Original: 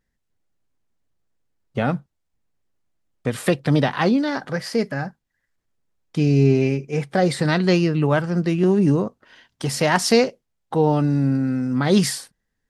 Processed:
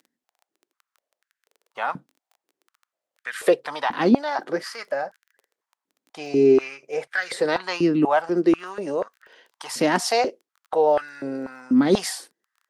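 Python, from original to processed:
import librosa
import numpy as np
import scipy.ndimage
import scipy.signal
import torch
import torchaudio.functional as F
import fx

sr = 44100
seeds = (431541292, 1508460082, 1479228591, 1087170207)

y = fx.dmg_crackle(x, sr, seeds[0], per_s=14.0, level_db=-38.0)
y = fx.filter_held_highpass(y, sr, hz=4.1, low_hz=270.0, high_hz=1600.0)
y = F.gain(torch.from_numpy(y), -4.0).numpy()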